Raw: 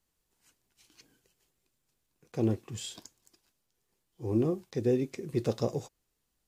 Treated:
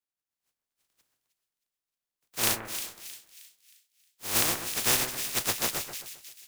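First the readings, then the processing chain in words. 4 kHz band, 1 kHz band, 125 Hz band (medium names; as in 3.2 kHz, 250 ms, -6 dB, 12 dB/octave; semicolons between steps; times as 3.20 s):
+16.0 dB, +10.0 dB, -10.0 dB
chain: spectral contrast reduction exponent 0.11; two-band feedback delay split 2 kHz, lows 132 ms, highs 313 ms, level -7 dB; three bands expanded up and down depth 40%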